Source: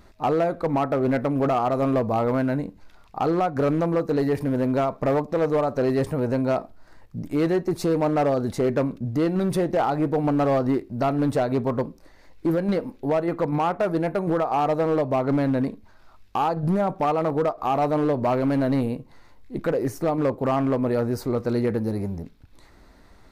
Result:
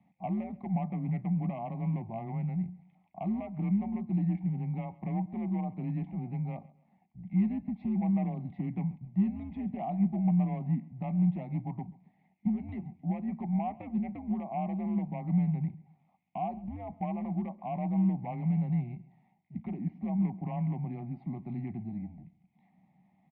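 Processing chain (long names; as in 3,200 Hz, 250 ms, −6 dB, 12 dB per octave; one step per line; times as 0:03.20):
formant filter u
parametric band 1,500 Hz −8 dB 0.59 octaves
single-sideband voice off tune −110 Hz 210–3,400 Hz
repeating echo 134 ms, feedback 34%, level −21 dB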